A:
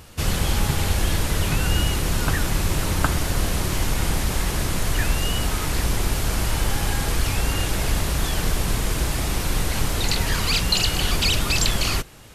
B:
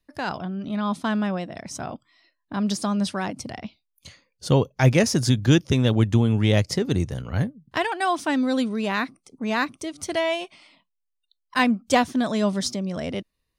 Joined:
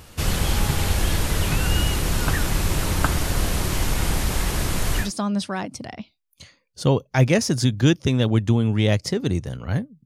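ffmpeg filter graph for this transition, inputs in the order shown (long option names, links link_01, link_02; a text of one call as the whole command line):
ffmpeg -i cue0.wav -i cue1.wav -filter_complex "[0:a]apad=whole_dur=10.05,atrim=end=10.05,atrim=end=5.11,asetpts=PTS-STARTPTS[link_01];[1:a]atrim=start=2.62:end=7.7,asetpts=PTS-STARTPTS[link_02];[link_01][link_02]acrossfade=duration=0.14:curve1=tri:curve2=tri" out.wav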